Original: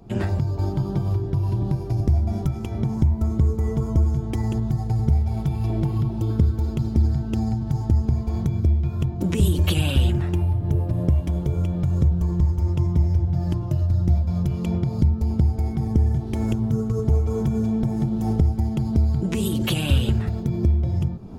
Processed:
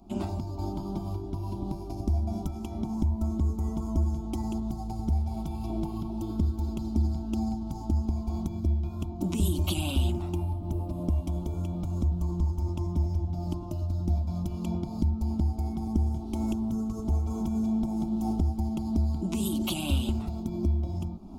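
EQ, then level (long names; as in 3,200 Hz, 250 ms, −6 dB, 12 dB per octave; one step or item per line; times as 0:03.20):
phaser with its sweep stopped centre 470 Hz, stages 6
−2.5 dB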